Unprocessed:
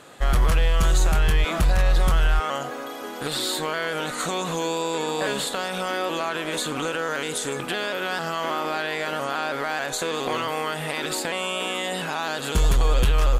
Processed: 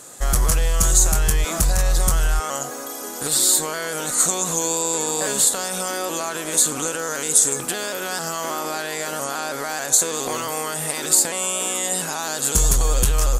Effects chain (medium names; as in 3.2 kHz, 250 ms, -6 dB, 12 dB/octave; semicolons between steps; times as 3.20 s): resonant high shelf 4.7 kHz +14 dB, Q 1.5